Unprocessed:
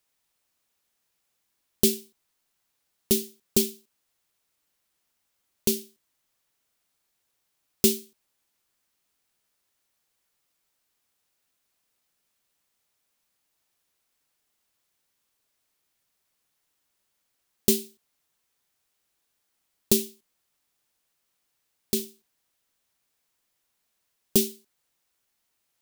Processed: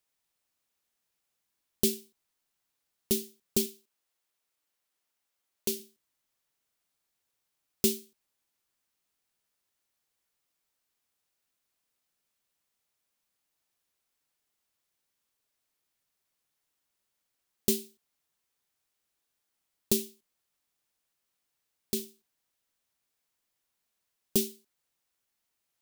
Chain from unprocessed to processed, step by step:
0:03.66–0:05.80: bass and treble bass −8 dB, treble −1 dB
level −5.5 dB

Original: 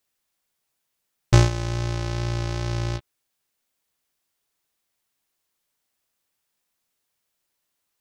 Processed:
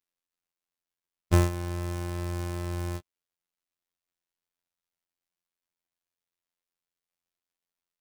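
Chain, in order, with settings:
gap after every zero crossing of 0.088 ms
phases set to zero 87.3 Hz
level −2 dB

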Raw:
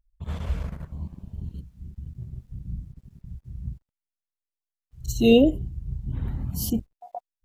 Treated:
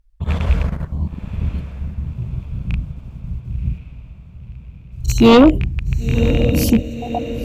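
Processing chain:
loose part that buzzes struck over −25 dBFS, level −26 dBFS
high-shelf EQ 6,200 Hz −8.5 dB
feedback delay with all-pass diffusion 1,043 ms, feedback 51%, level −12.5 dB
sine wavefolder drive 7 dB, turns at −5 dBFS
0:02.10–0:05.33: parametric band 1,800 Hz −6.5 dB 0.36 octaves
level +1.5 dB

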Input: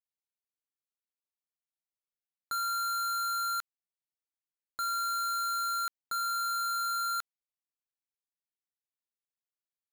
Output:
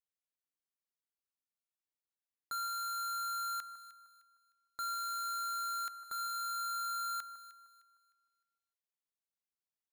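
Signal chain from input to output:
delay that swaps between a low-pass and a high-pass 153 ms, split 1,400 Hz, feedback 54%, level −10 dB
level −5.5 dB

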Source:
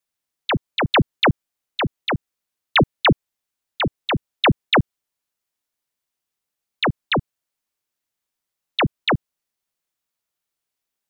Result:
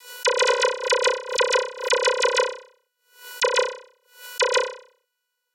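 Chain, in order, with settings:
high-pass filter 190 Hz
parametric band 310 Hz −8 dB 1 octave
in parallel at −1 dB: compressor whose output falls as the input rises −29 dBFS, ratio −1
on the sum: brickwall limiter −17 dBFS, peak gain reduction 8 dB
channel vocoder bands 16, saw 246 Hz
on a send: flutter between parallel walls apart 10.7 metres, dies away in 0.94 s
on the sum: wrong playback speed 7.5 ips tape played at 15 ips
background raised ahead of every attack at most 130 dB per second
level +3.5 dB

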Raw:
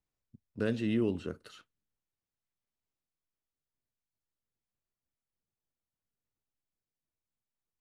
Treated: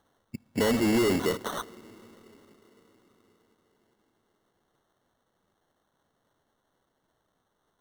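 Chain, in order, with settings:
mid-hump overdrive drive 30 dB, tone 1,100 Hz, clips at −18 dBFS
downward compressor 1.5 to 1, threshold −36 dBFS, peak gain reduction 5 dB
on a send at −20.5 dB: convolution reverb RT60 5.4 s, pre-delay 46 ms
on the sum: decimation without filtering 18×
level +6.5 dB

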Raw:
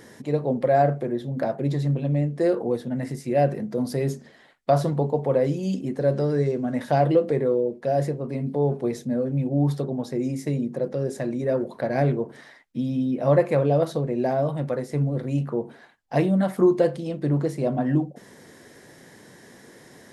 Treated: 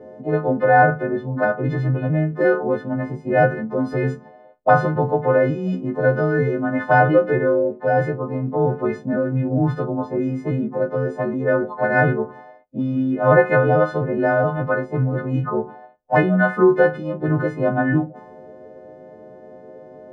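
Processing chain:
every partial snapped to a pitch grid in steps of 3 semitones
envelope-controlled low-pass 540–1,500 Hz up, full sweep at −21.5 dBFS
level +3.5 dB

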